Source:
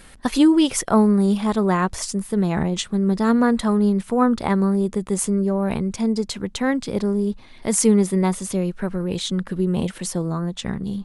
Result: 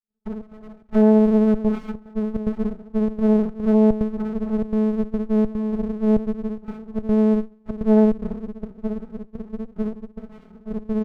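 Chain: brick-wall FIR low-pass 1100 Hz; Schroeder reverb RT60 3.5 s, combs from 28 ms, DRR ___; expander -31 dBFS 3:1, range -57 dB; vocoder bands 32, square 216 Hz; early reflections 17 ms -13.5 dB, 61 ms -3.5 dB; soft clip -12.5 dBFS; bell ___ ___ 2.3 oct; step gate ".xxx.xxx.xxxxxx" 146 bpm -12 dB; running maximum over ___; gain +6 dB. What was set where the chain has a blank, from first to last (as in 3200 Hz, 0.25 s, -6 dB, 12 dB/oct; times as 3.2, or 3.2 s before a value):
16 dB, 370 Hz, -2 dB, 65 samples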